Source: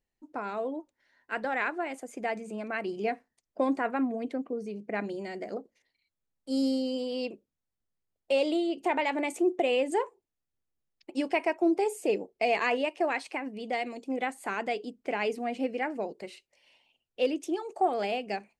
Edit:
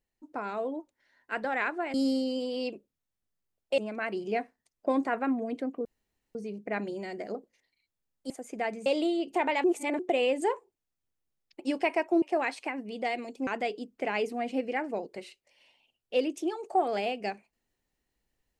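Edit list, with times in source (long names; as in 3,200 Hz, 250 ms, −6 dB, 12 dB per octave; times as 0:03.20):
0:01.94–0:02.50: swap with 0:06.52–0:08.36
0:04.57: splice in room tone 0.50 s
0:09.14–0:09.49: reverse
0:11.72–0:12.90: remove
0:14.15–0:14.53: remove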